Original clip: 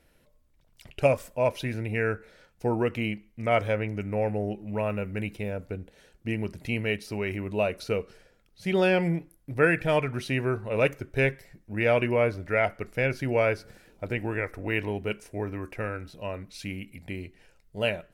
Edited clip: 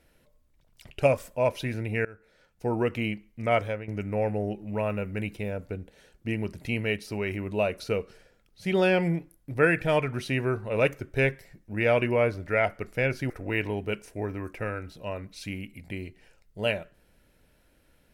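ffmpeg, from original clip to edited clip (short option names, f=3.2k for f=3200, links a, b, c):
-filter_complex "[0:a]asplit=4[a][b][c][d];[a]atrim=end=2.05,asetpts=PTS-STARTPTS,afade=t=out:st=2.046:d=0.004:c=hsin:silence=0.0668344[e];[b]atrim=start=2.05:end=3.88,asetpts=PTS-STARTPTS,afade=t=in:d=0.78:silence=0.0668344,afade=t=out:st=1.48:d=0.35:silence=0.223872[f];[c]atrim=start=3.88:end=13.302,asetpts=PTS-STARTPTS,afade=t=in:d=0.004:c=hsin:silence=0.223872[g];[d]atrim=start=14.478[h];[e][f][g]concat=n=3:v=0:a=1[i];[i][h]acrossfade=d=0.004:c1=hsin:c2=hsin"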